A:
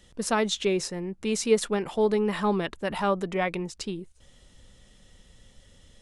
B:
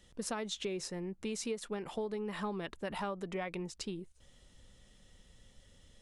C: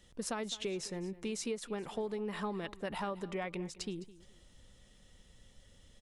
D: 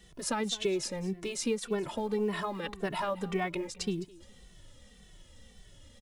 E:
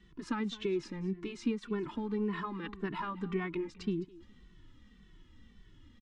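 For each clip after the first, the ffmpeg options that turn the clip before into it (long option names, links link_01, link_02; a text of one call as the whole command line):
ffmpeg -i in.wav -af "acompressor=threshold=-28dB:ratio=10,volume=-6dB" out.wav
ffmpeg -i in.wav -af "aecho=1:1:210|420:0.126|0.034" out.wav
ffmpeg -i in.wav -filter_complex "[0:a]asplit=2[link_01][link_02];[link_02]acrusher=bits=5:mode=log:mix=0:aa=0.000001,volume=-11dB[link_03];[link_01][link_03]amix=inputs=2:normalize=0,asplit=2[link_04][link_05];[link_05]adelay=2.2,afreqshift=-1.8[link_06];[link_04][link_06]amix=inputs=2:normalize=1,volume=6.5dB" out.wav
ffmpeg -i in.wav -af "firequalizer=gain_entry='entry(140,0);entry(310,7);entry(570,-18);entry(1000,1);entry(11000,-29)':delay=0.05:min_phase=1,volume=-2.5dB" out.wav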